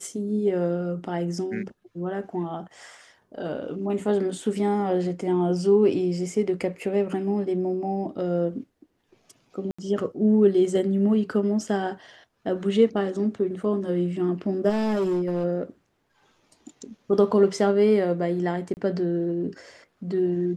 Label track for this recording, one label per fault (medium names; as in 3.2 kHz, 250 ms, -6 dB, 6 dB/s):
9.710000	9.790000	dropout 75 ms
14.690000	15.450000	clipped -20.5 dBFS
18.740000	18.770000	dropout 29 ms